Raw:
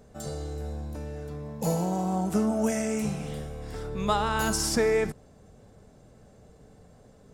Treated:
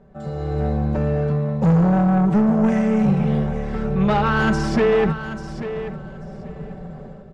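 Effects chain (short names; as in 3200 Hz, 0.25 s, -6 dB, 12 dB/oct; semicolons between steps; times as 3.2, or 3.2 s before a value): LPF 2100 Hz 12 dB/oct; bell 160 Hz +7.5 dB 0.28 oct; comb 5.2 ms, depth 69%; AGC gain up to 16 dB; soft clip -12.5 dBFS, distortion -11 dB; feedback echo 0.839 s, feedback 17%, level -11.5 dB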